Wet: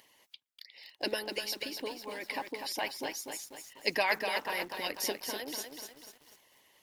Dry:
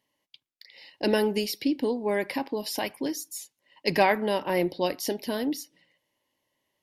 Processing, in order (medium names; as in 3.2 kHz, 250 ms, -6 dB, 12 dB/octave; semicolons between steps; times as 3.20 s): 1.19–4.00 s: treble shelf 6.6 kHz -6.5 dB; harmonic-percussive split harmonic -14 dB; bass shelf 480 Hz -10.5 dB; upward compressor, threshold -48 dBFS; bit-crushed delay 246 ms, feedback 55%, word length 9-bit, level -5.5 dB